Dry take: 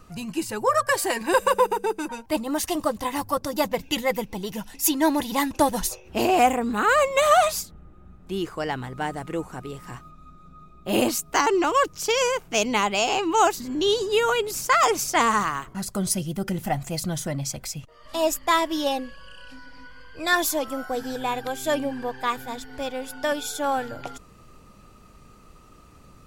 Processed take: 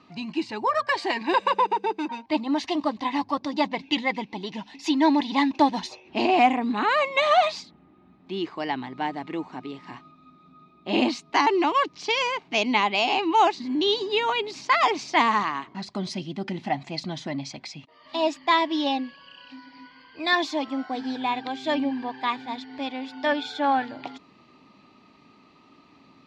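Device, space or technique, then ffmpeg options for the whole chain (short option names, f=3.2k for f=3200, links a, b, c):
kitchen radio: -filter_complex "[0:a]asettb=1/sr,asplit=3[a][b][c];[a]atrim=end=23.264[d];[b]atrim=start=23.26:end=23.85,asetpts=PTS-STARTPTS,afade=t=in:d=0.004:c=qsin,afade=t=out:st=0.586:d=0.004:c=qsin,equalizer=f=100:t=o:w=0.67:g=9,equalizer=f=630:t=o:w=0.67:g=4,equalizer=f=1.6k:t=o:w=0.67:g=7,equalizer=f=6.3k:t=o:w=0.67:g=-4[e];[c]atrim=start=23.846[f];[d][e]acrossfade=d=0.004:c1=hsin:c2=qsin[g];[g][f]acrossfade=d=0.004:c1=qsin:c2=hsin,highpass=230,equalizer=f=270:t=q:w=4:g=7,equalizer=f=500:t=q:w=4:g=-10,equalizer=f=910:t=q:w=4:g=4,equalizer=f=1.4k:t=q:w=4:g=-9,equalizer=f=2.2k:t=q:w=4:g=4,equalizer=f=4.1k:t=q:w=4:g=5,lowpass=f=4.5k:w=0.5412,lowpass=f=4.5k:w=1.3066"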